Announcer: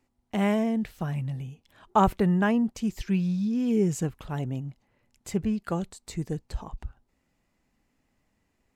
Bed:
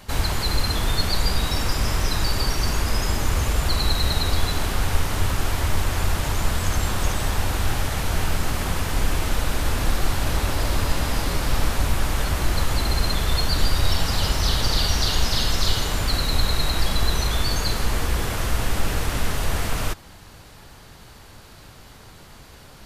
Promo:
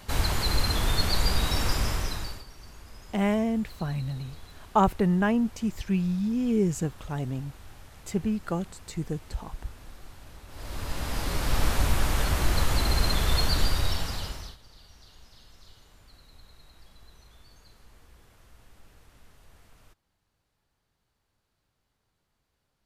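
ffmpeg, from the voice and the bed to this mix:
ffmpeg -i stem1.wav -i stem2.wav -filter_complex "[0:a]adelay=2800,volume=-0.5dB[link_01];[1:a]volume=19.5dB,afade=type=out:start_time=1.72:duration=0.72:silence=0.0794328,afade=type=in:start_time=10.48:duration=1.23:silence=0.0749894,afade=type=out:start_time=13.44:duration=1.13:silence=0.0316228[link_02];[link_01][link_02]amix=inputs=2:normalize=0" out.wav

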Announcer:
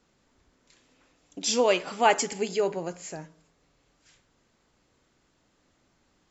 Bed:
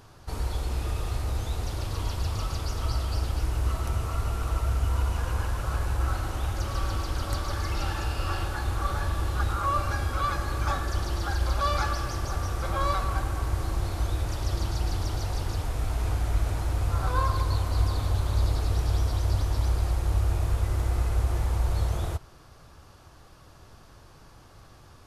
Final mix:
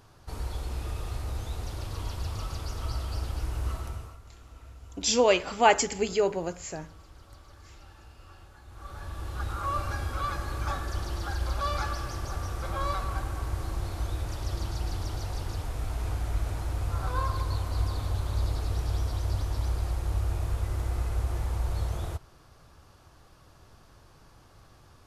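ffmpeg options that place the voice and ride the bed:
ffmpeg -i stem1.wav -i stem2.wav -filter_complex "[0:a]adelay=3600,volume=1dB[link_01];[1:a]volume=13.5dB,afade=type=out:start_time=3.71:duration=0.48:silence=0.133352,afade=type=in:start_time=8.67:duration=1.07:silence=0.125893[link_02];[link_01][link_02]amix=inputs=2:normalize=0" out.wav

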